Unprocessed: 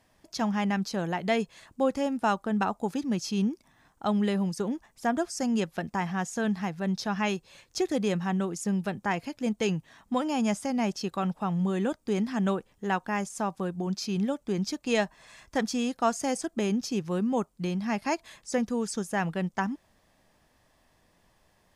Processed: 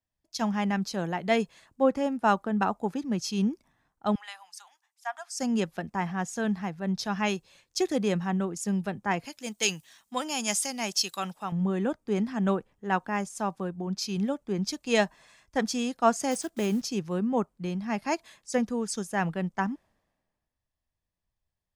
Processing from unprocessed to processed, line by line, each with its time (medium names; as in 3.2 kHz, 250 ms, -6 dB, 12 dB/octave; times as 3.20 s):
4.15–5.38 s: elliptic high-pass 750 Hz
9.25–11.52 s: tilt EQ +3 dB/octave
16.31–16.84 s: block-companded coder 5-bit
whole clip: three bands expanded up and down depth 70%